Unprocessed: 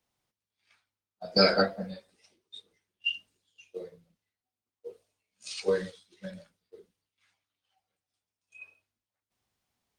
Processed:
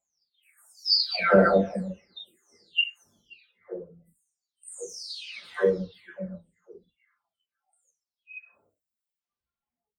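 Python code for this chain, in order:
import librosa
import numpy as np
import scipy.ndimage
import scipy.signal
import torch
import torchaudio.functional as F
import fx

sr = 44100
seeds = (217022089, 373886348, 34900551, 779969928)

y = fx.spec_delay(x, sr, highs='early', ms=791)
y = fx.noise_reduce_blind(y, sr, reduce_db=19)
y = F.gain(torch.from_numpy(y), 7.0).numpy()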